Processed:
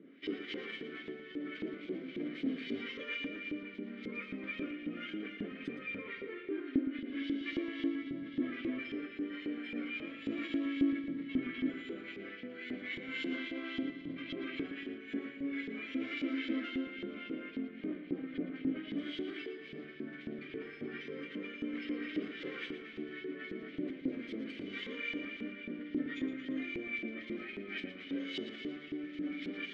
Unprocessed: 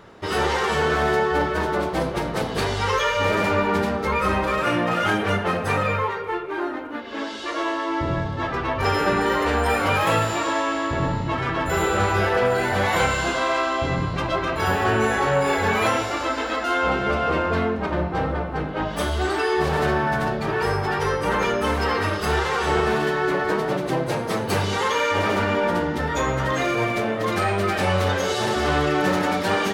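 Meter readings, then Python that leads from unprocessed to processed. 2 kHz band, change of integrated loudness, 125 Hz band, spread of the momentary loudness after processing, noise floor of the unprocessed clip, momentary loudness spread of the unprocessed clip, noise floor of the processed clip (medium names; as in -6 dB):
-18.5 dB, -17.5 dB, -28.0 dB, 7 LU, -29 dBFS, 5 LU, -49 dBFS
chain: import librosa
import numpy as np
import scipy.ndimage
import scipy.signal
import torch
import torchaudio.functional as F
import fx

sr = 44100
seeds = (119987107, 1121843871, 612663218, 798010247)

p1 = scipy.signal.sosfilt(scipy.signal.butter(2, 110.0, 'highpass', fs=sr, output='sos'), x)
p2 = fx.peak_eq(p1, sr, hz=170.0, db=10.0, octaves=2.6)
p3 = fx.over_compress(p2, sr, threshold_db=-22.0, ratio=-1.0)
p4 = fx.vowel_filter(p3, sr, vowel='i')
p5 = fx.filter_lfo_bandpass(p4, sr, shape='saw_up', hz=3.7, low_hz=380.0, high_hz=4000.0, q=1.0)
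p6 = p5 + fx.echo_feedback(p5, sr, ms=115, feedback_pct=55, wet_db=-11.5, dry=0)
y = p6 * librosa.db_to_amplitude(1.0)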